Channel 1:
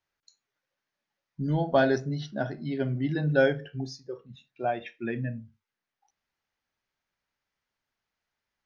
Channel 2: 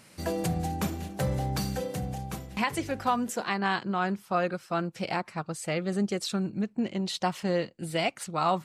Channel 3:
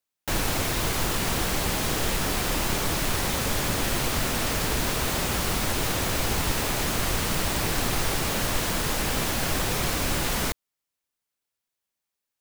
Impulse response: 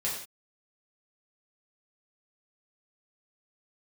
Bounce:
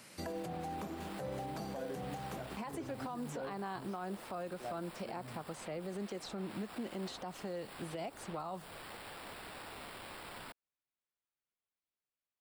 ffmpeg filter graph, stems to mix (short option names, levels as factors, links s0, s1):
-filter_complex "[0:a]volume=0.211[s0];[1:a]lowshelf=f=160:g=-9,volume=1[s1];[2:a]highpass=800,acrusher=samples=7:mix=1:aa=0.000001,volume=0.15[s2];[s0][s1][s2]amix=inputs=3:normalize=0,acrossover=split=220|1100|4800[s3][s4][s5][s6];[s3]acompressor=threshold=0.00501:ratio=4[s7];[s4]acompressor=threshold=0.0224:ratio=4[s8];[s5]acompressor=threshold=0.00251:ratio=4[s9];[s6]acompressor=threshold=0.00158:ratio=4[s10];[s7][s8][s9][s10]amix=inputs=4:normalize=0,alimiter=level_in=2.66:limit=0.0631:level=0:latency=1:release=113,volume=0.376"